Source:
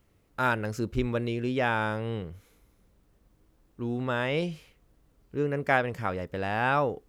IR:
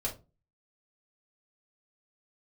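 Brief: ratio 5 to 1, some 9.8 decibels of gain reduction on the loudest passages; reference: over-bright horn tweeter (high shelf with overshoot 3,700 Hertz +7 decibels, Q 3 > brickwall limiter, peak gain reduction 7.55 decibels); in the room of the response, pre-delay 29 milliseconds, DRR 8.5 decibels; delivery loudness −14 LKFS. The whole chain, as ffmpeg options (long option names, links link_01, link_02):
-filter_complex "[0:a]acompressor=threshold=-31dB:ratio=5,asplit=2[link_01][link_02];[1:a]atrim=start_sample=2205,adelay=29[link_03];[link_02][link_03]afir=irnorm=-1:irlink=0,volume=-12dB[link_04];[link_01][link_04]amix=inputs=2:normalize=0,highshelf=frequency=3700:width_type=q:width=3:gain=7,volume=24dB,alimiter=limit=-4dB:level=0:latency=1"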